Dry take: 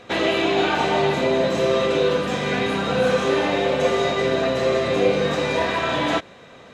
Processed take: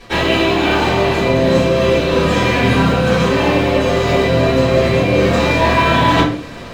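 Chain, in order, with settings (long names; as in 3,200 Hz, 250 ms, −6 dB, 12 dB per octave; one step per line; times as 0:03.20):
low-shelf EQ 190 Hz +6 dB
mains-hum notches 50/100/150/200/250/300/350/400/450/500 Hz
reversed playback
downward compressor 6 to 1, threshold −27 dBFS, peak gain reduction 12 dB
reversed playback
dead-zone distortion −49.5 dBFS
convolution reverb RT60 0.45 s, pre-delay 3 ms, DRR −11 dB
level +3 dB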